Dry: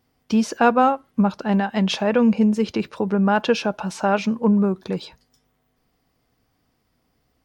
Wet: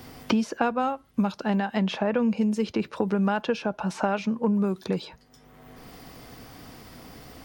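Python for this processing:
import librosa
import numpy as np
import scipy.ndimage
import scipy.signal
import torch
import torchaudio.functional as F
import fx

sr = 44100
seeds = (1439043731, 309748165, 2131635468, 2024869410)

y = fx.band_squash(x, sr, depth_pct=100)
y = F.gain(torch.from_numpy(y), -6.5).numpy()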